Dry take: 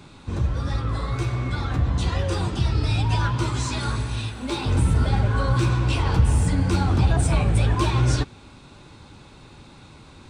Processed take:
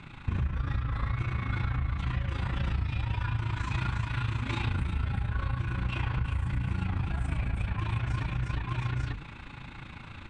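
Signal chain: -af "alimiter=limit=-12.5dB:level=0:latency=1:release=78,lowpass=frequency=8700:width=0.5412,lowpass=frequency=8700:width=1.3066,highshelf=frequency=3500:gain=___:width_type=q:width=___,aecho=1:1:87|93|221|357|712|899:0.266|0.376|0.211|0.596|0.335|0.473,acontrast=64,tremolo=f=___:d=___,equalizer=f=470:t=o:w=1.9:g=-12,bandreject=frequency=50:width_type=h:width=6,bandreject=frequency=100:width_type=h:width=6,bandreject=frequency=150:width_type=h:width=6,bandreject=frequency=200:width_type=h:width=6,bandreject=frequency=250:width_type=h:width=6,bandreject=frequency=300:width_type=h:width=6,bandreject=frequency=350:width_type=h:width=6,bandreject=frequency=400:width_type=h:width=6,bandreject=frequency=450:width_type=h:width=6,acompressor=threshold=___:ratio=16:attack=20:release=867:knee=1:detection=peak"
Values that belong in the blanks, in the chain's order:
-13, 1.5, 28, 0.71, -25dB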